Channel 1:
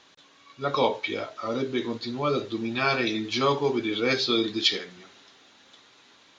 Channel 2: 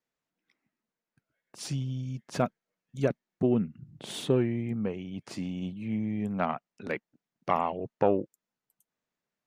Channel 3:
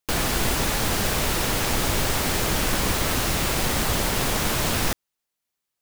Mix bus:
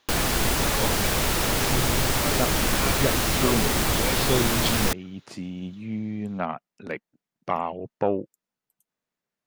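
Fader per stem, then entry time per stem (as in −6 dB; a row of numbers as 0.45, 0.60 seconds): −8.0, +0.5, 0.0 decibels; 0.00, 0.00, 0.00 seconds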